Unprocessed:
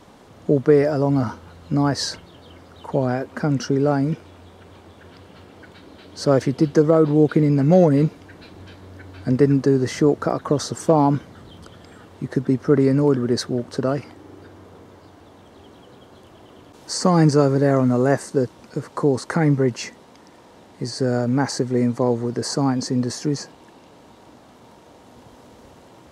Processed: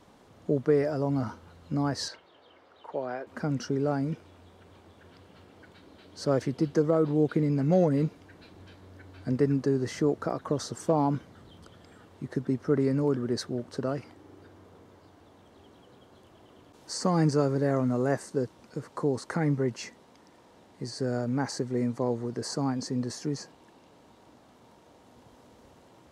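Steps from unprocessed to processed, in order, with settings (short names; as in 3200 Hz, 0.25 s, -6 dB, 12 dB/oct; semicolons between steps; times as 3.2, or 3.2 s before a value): 2.08–3.27 three-band isolator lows -18 dB, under 340 Hz, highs -14 dB, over 4400 Hz; gain -9 dB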